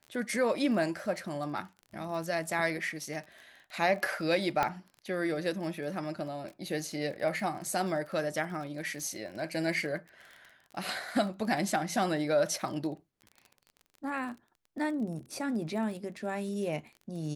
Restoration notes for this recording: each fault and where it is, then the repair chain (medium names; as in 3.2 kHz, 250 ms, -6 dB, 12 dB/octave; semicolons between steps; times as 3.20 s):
crackle 28 per s -40 dBFS
4.63 s: pop -14 dBFS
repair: de-click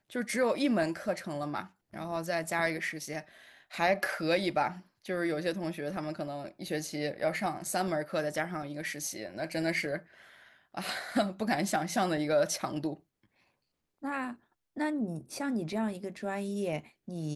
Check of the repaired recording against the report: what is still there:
nothing left